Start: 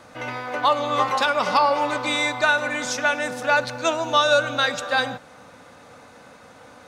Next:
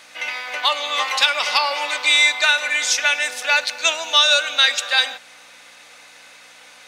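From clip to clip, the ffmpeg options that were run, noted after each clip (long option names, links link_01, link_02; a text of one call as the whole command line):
ffmpeg -i in.wav -af "aeval=exprs='val(0)+0.0126*(sin(2*PI*60*n/s)+sin(2*PI*2*60*n/s)/2+sin(2*PI*3*60*n/s)/3+sin(2*PI*4*60*n/s)/4+sin(2*PI*5*60*n/s)/5)':channel_layout=same,highpass=730,highshelf=frequency=1700:width_type=q:width=1.5:gain=9" out.wav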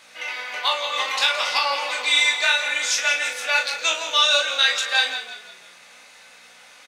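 ffmpeg -i in.wav -filter_complex "[0:a]flanger=delay=17.5:depth=4.9:speed=0.62,asplit=2[link_01][link_02];[link_02]adelay=38,volume=-6.5dB[link_03];[link_01][link_03]amix=inputs=2:normalize=0,asplit=2[link_04][link_05];[link_05]asplit=4[link_06][link_07][link_08][link_09];[link_06]adelay=169,afreqshift=-39,volume=-11dB[link_10];[link_07]adelay=338,afreqshift=-78,volume=-18.7dB[link_11];[link_08]adelay=507,afreqshift=-117,volume=-26.5dB[link_12];[link_09]adelay=676,afreqshift=-156,volume=-34.2dB[link_13];[link_10][link_11][link_12][link_13]amix=inputs=4:normalize=0[link_14];[link_04][link_14]amix=inputs=2:normalize=0,volume=-1dB" out.wav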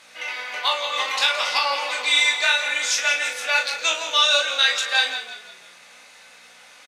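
ffmpeg -i in.wav -af "aresample=32000,aresample=44100" out.wav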